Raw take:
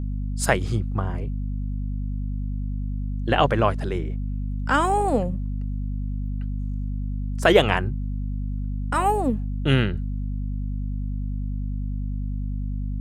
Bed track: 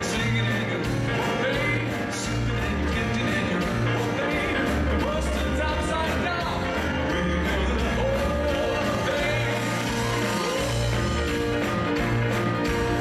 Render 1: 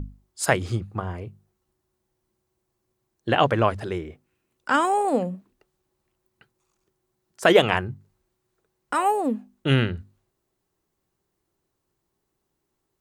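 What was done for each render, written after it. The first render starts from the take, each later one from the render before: notches 50/100/150/200/250 Hz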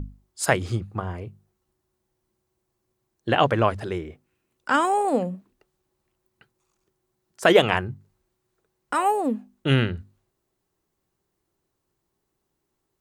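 nothing audible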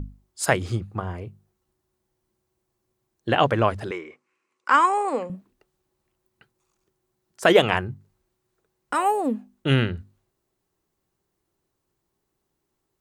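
3.91–5.3 speaker cabinet 380–8300 Hz, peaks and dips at 680 Hz -8 dB, 1100 Hz +10 dB, 2200 Hz +7 dB, 3500 Hz -5 dB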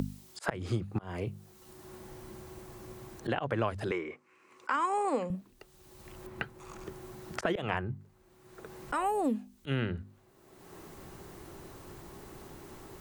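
auto swell 0.449 s; three-band squash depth 100%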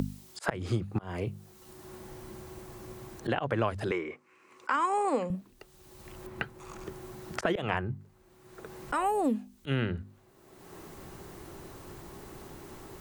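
gain +2 dB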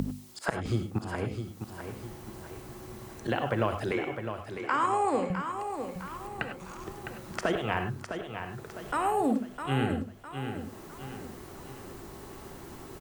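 feedback echo 0.657 s, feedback 44%, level -8 dB; non-linear reverb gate 0.12 s rising, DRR 6.5 dB

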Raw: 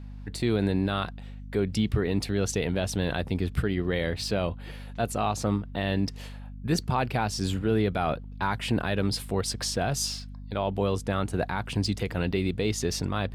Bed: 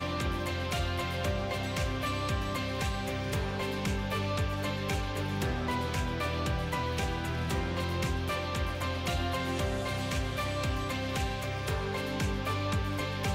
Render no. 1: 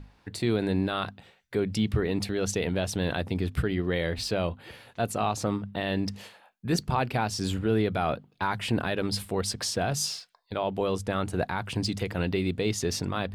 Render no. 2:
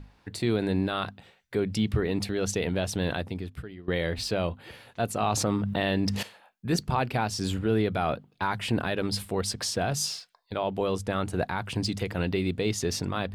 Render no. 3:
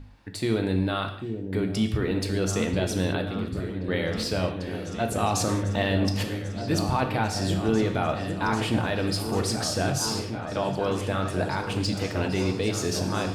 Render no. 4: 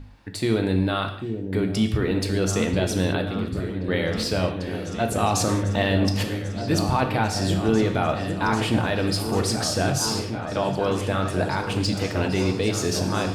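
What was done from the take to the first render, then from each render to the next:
notches 50/100/150/200/250 Hz
3.12–3.88 fade out quadratic, to -16.5 dB; 5.22–6.23 fast leveller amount 70%
on a send: repeats that get brighter 0.794 s, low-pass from 400 Hz, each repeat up 2 oct, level -6 dB; on the sum: non-linear reverb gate 0.23 s falling, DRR 4.5 dB
gain +3 dB

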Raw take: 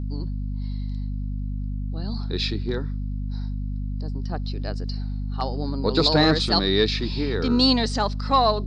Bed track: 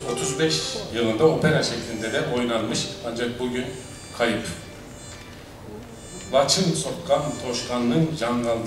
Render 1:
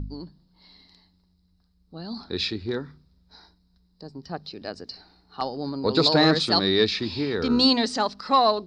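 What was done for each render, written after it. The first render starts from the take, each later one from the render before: de-hum 50 Hz, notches 5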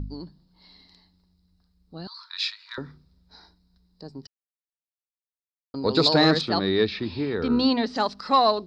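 2.07–2.78 brick-wall FIR high-pass 900 Hz; 4.27–5.74 mute; 6.41–7.96 air absorption 240 m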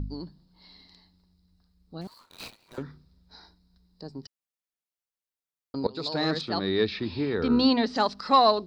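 2.01–2.83 median filter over 25 samples; 5.87–7.79 fade in equal-power, from -20.5 dB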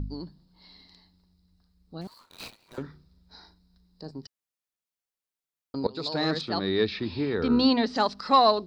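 2.8–4.11 doubler 38 ms -12.5 dB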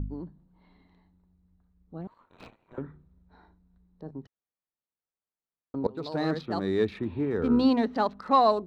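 Wiener smoothing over 9 samples; LPF 1400 Hz 6 dB/oct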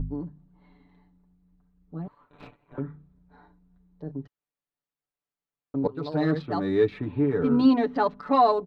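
tone controls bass +2 dB, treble -9 dB; comb 6.9 ms, depth 79%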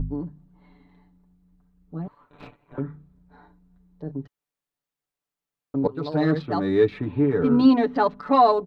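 gain +3 dB

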